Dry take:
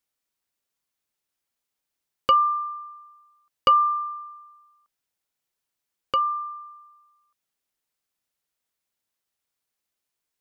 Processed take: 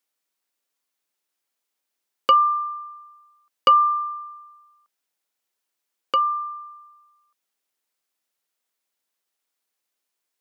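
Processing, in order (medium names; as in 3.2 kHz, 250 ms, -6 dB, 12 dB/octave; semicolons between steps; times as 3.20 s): high-pass 250 Hz; trim +2.5 dB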